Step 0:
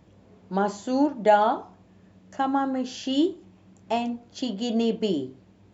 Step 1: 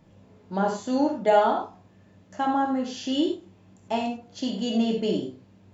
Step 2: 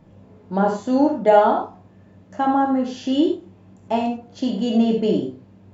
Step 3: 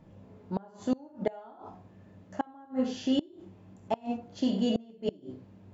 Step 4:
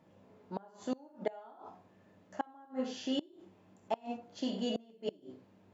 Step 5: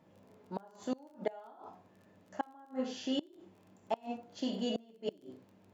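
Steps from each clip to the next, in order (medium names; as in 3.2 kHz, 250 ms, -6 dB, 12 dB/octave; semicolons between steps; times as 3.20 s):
gated-style reverb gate 120 ms flat, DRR 0.5 dB; trim -2.5 dB
treble shelf 2.1 kHz -9.5 dB; trim +6.5 dB
inverted gate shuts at -11 dBFS, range -28 dB; trim -5 dB
high-pass 420 Hz 6 dB/octave; trim -2.5 dB
crackle 28 per s -53 dBFS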